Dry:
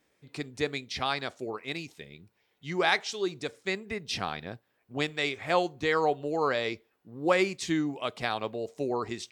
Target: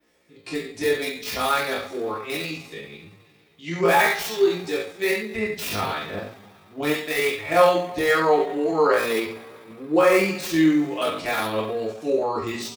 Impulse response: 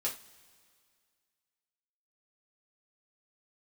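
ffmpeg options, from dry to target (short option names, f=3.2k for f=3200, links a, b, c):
-filter_complex "[0:a]adynamicequalizer=threshold=0.00251:dfrequency=7500:dqfactor=1.6:tfrequency=7500:tqfactor=1.6:attack=5:release=100:ratio=0.375:range=2.5:mode=cutabove:tftype=bell,flanger=delay=17.5:depth=2.2:speed=0.32,aecho=1:1:45|56:0.2|0.335,acrossover=split=130|2700[a][b][c];[c]aeval=exprs='(mod(63.1*val(0)+1,2)-1)/63.1':c=same[d];[a][b][d]amix=inputs=3:normalize=0[e];[1:a]atrim=start_sample=2205[f];[e][f]afir=irnorm=-1:irlink=0,atempo=0.73,volume=8dB"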